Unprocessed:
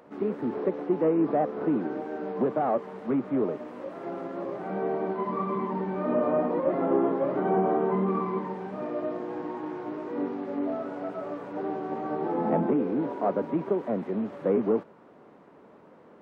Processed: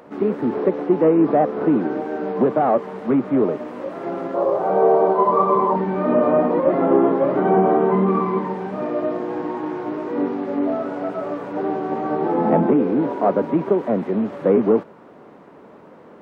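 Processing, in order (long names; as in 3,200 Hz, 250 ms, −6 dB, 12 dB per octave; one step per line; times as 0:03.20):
0:04.34–0:05.76: octave-band graphic EQ 250/500/1,000/2,000 Hz −9/+10/+7/−7 dB
level +8.5 dB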